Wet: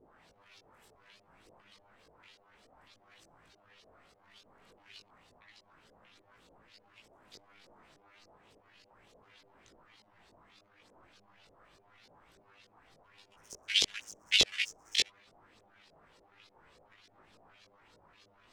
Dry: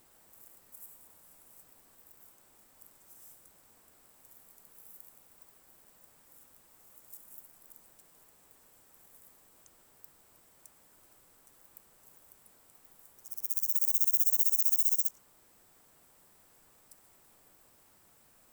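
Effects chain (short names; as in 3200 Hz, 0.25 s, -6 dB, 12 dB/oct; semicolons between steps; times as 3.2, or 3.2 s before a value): trilling pitch shifter +12 st, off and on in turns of 0.318 s; LFO low-pass saw up 3.4 Hz 430–5100 Hz; chorus voices 2, 0.32 Hz, delay 19 ms, depth 1.2 ms; gain +6 dB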